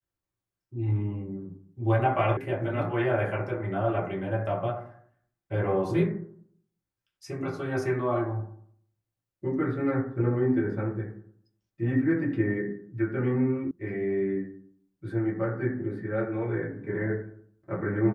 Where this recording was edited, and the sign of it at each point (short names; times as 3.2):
2.37 sound cut off
13.71 sound cut off